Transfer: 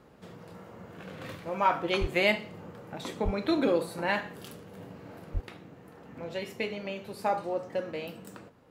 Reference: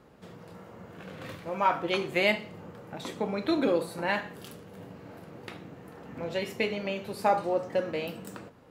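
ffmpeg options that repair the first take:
-filter_complex "[0:a]asplit=3[s0][s1][s2];[s0]afade=t=out:st=2:d=0.02[s3];[s1]highpass=f=140:w=0.5412,highpass=f=140:w=1.3066,afade=t=in:st=2:d=0.02,afade=t=out:st=2.12:d=0.02[s4];[s2]afade=t=in:st=2.12:d=0.02[s5];[s3][s4][s5]amix=inputs=3:normalize=0,asplit=3[s6][s7][s8];[s6]afade=t=out:st=3.24:d=0.02[s9];[s7]highpass=f=140:w=0.5412,highpass=f=140:w=1.3066,afade=t=in:st=3.24:d=0.02,afade=t=out:st=3.36:d=0.02[s10];[s8]afade=t=in:st=3.36:d=0.02[s11];[s9][s10][s11]amix=inputs=3:normalize=0,asplit=3[s12][s13][s14];[s12]afade=t=out:st=5.33:d=0.02[s15];[s13]highpass=f=140:w=0.5412,highpass=f=140:w=1.3066,afade=t=in:st=5.33:d=0.02,afade=t=out:st=5.45:d=0.02[s16];[s14]afade=t=in:st=5.45:d=0.02[s17];[s15][s16][s17]amix=inputs=3:normalize=0,asetnsamples=n=441:p=0,asendcmd='5.41 volume volume 4dB',volume=1"

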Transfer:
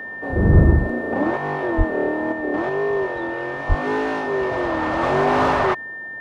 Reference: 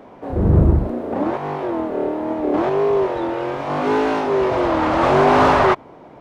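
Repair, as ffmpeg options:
-filter_complex "[0:a]bandreject=f=1800:w=30,asplit=3[s0][s1][s2];[s0]afade=t=out:st=0.52:d=0.02[s3];[s1]highpass=f=140:w=0.5412,highpass=f=140:w=1.3066,afade=t=in:st=0.52:d=0.02,afade=t=out:st=0.64:d=0.02[s4];[s2]afade=t=in:st=0.64:d=0.02[s5];[s3][s4][s5]amix=inputs=3:normalize=0,asplit=3[s6][s7][s8];[s6]afade=t=out:st=1.77:d=0.02[s9];[s7]highpass=f=140:w=0.5412,highpass=f=140:w=1.3066,afade=t=in:st=1.77:d=0.02,afade=t=out:st=1.89:d=0.02[s10];[s8]afade=t=in:st=1.89:d=0.02[s11];[s9][s10][s11]amix=inputs=3:normalize=0,asplit=3[s12][s13][s14];[s12]afade=t=out:st=3.68:d=0.02[s15];[s13]highpass=f=140:w=0.5412,highpass=f=140:w=1.3066,afade=t=in:st=3.68:d=0.02,afade=t=out:st=3.8:d=0.02[s16];[s14]afade=t=in:st=3.8:d=0.02[s17];[s15][s16][s17]amix=inputs=3:normalize=0,asetnsamples=n=441:p=0,asendcmd='2.32 volume volume 4.5dB',volume=1"

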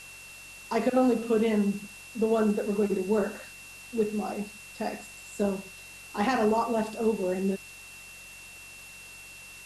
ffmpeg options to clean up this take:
-af "adeclick=t=4,bandreject=f=46.3:t=h:w=4,bandreject=f=92.6:t=h:w=4,bandreject=f=138.9:t=h:w=4,bandreject=f=185.2:t=h:w=4,bandreject=f=2700:w=30,afftdn=nr=26:nf=-47"

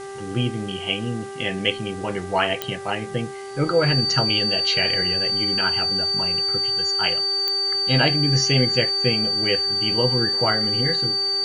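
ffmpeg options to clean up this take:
-af "adeclick=t=4,bandreject=f=393.3:t=h:w=4,bandreject=f=786.6:t=h:w=4,bandreject=f=1179.9:t=h:w=4,bandreject=f=1573.2:t=h:w=4,bandreject=f=1966.5:t=h:w=4,bandreject=f=4600:w=30,afwtdn=0.0056"

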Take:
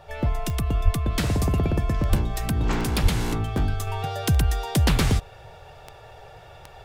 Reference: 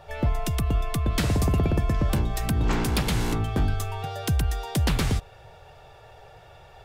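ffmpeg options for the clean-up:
-filter_complex "[0:a]adeclick=t=4,asplit=3[s0][s1][s2];[s0]afade=t=out:st=0.84:d=0.02[s3];[s1]highpass=f=140:w=0.5412,highpass=f=140:w=1.3066,afade=t=in:st=0.84:d=0.02,afade=t=out:st=0.96:d=0.02[s4];[s2]afade=t=in:st=0.96:d=0.02[s5];[s3][s4][s5]amix=inputs=3:normalize=0,asplit=3[s6][s7][s8];[s6]afade=t=out:st=2.09:d=0.02[s9];[s7]highpass=f=140:w=0.5412,highpass=f=140:w=1.3066,afade=t=in:st=2.09:d=0.02,afade=t=out:st=2.21:d=0.02[s10];[s8]afade=t=in:st=2.21:d=0.02[s11];[s9][s10][s11]amix=inputs=3:normalize=0,asplit=3[s12][s13][s14];[s12]afade=t=out:st=3.02:d=0.02[s15];[s13]highpass=f=140:w=0.5412,highpass=f=140:w=1.3066,afade=t=in:st=3.02:d=0.02,afade=t=out:st=3.14:d=0.02[s16];[s14]afade=t=in:st=3.14:d=0.02[s17];[s15][s16][s17]amix=inputs=3:normalize=0,asetnsamples=n=441:p=0,asendcmd='3.87 volume volume -3.5dB',volume=1"

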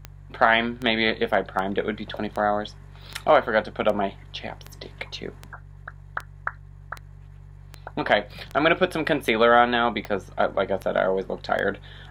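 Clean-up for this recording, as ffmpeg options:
-af "adeclick=t=4,bandreject=f=47.8:t=h:w=4,bandreject=f=95.6:t=h:w=4,bandreject=f=143.4:t=h:w=4"

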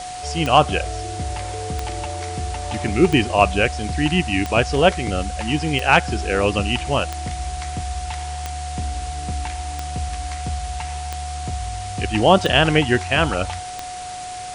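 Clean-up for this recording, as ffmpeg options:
-af "adeclick=t=4,bandreject=f=730:w=30,afwtdn=0.018"

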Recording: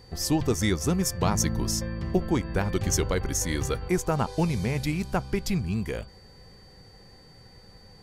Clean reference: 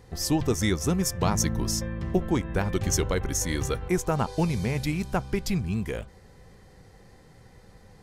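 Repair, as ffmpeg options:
-af "bandreject=f=4600:w=30"

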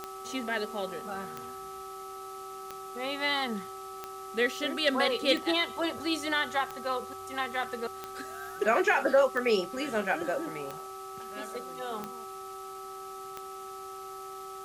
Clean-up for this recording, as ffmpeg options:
-af "adeclick=t=4,bandreject=f=385.1:t=h:w=4,bandreject=f=770.2:t=h:w=4,bandreject=f=1155.3:t=h:w=4,bandreject=f=1300:w=30,afwtdn=0.0025"

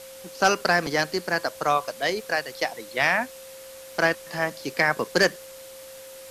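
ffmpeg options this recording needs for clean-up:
-af "adeclick=t=4,bandreject=f=530:w=30,afftdn=nr=27:nf=-43"

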